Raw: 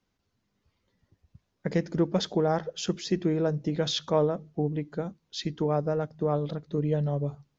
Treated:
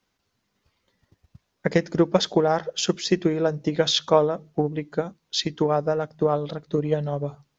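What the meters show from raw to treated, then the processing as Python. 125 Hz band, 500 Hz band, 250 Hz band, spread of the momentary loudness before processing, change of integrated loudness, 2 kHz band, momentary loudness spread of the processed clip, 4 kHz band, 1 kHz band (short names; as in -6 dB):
+0.5 dB, +5.5 dB, +3.5 dB, 7 LU, +5.0 dB, +8.5 dB, 7 LU, +8.0 dB, +7.0 dB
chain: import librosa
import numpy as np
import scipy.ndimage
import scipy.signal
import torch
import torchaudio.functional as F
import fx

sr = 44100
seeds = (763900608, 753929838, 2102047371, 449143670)

y = fx.low_shelf(x, sr, hz=380.0, db=-9.0)
y = fx.transient(y, sr, attack_db=6, sustain_db=0)
y = y * librosa.db_to_amplitude(6.5)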